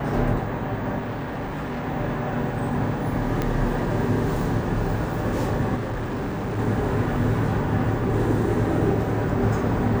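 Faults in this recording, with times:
0.98–1.86 clipped -26 dBFS
3.42 pop -12 dBFS
5.75–6.59 clipped -24.5 dBFS

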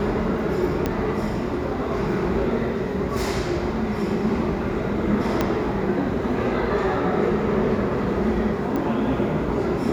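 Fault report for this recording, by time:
0.86 pop -10 dBFS
5.41 pop -7 dBFS
8.76 pop -15 dBFS

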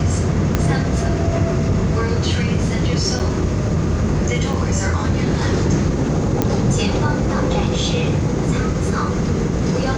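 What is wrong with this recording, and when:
0.55 pop -3 dBFS
3.19–3.2 gap 7.6 ms
4.53–4.54 gap 5.1 ms
6.42 pop -3 dBFS

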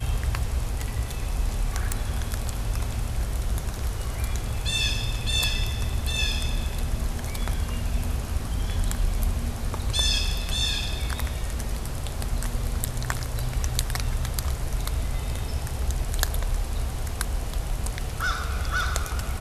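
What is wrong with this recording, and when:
1.92 pop

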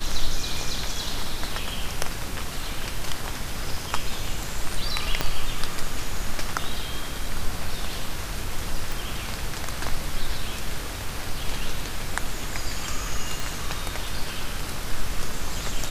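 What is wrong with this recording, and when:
5.21 pop -6 dBFS
8.92 pop
13.4 pop

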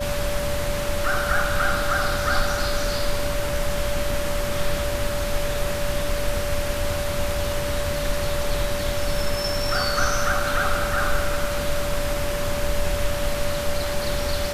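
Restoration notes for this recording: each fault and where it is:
tone 580 Hz -27 dBFS

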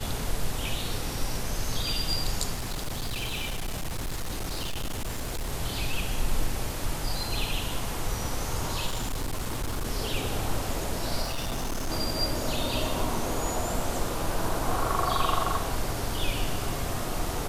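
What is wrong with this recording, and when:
2.54–5.53 clipped -27.5 dBFS
8.86–9.85 clipped -26 dBFS
11.22–11.9 clipped -26.5 dBFS

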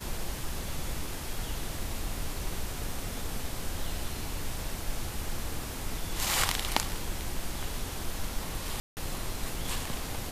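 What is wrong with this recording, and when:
8.8–8.97 gap 0.169 s

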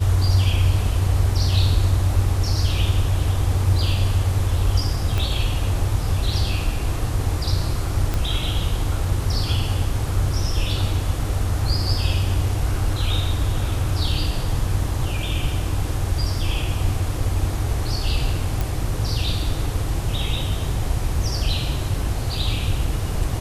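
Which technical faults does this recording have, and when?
5.18 pop -11 dBFS
8.14 pop -10 dBFS
18.61 pop

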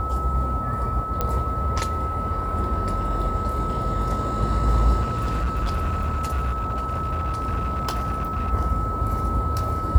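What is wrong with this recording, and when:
tone 1300 Hz -27 dBFS
1.21 pop -10 dBFS
5.01–8.52 clipped -20 dBFS

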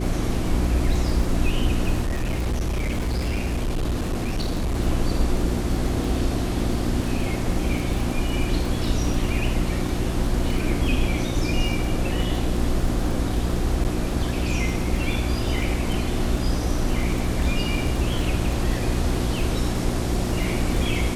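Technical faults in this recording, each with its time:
crackle 24/s -27 dBFS
hum 60 Hz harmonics 6 -27 dBFS
2.03–4.76 clipped -20.5 dBFS
13.84–13.85 gap 7.9 ms

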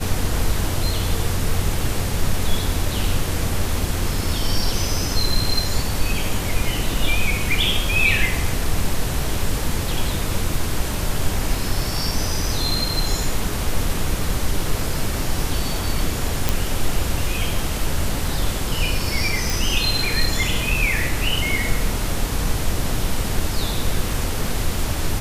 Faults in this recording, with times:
16.49 pop
19.5 pop

